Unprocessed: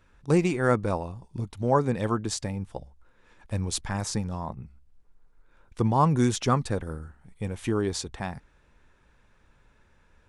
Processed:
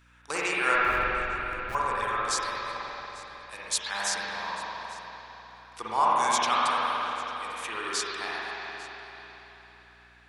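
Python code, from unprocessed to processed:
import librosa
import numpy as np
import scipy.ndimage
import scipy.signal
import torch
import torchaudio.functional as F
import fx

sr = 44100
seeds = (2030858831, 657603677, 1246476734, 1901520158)

y = scipy.signal.sosfilt(scipy.signal.butter(2, 1300.0, 'highpass', fs=sr, output='sos'), x)
y = fx.rider(y, sr, range_db=10, speed_s=2.0)
y = fx.schmitt(y, sr, flips_db=-37.0, at=(0.75, 1.75))
y = y + 10.0 ** (-21.5 / 20.0) * np.pad(y, (int(848 * sr / 1000.0), 0))[:len(y)]
y = fx.rev_spring(y, sr, rt60_s=3.9, pass_ms=(45, 55), chirp_ms=80, drr_db=-7.0)
y = fx.add_hum(y, sr, base_hz=60, snr_db=31)
y = y * librosa.db_to_amplitude(3.0)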